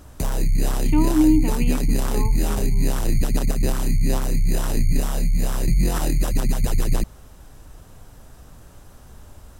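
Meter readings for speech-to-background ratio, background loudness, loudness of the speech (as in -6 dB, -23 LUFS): 0.5 dB, -24.0 LUFS, -23.5 LUFS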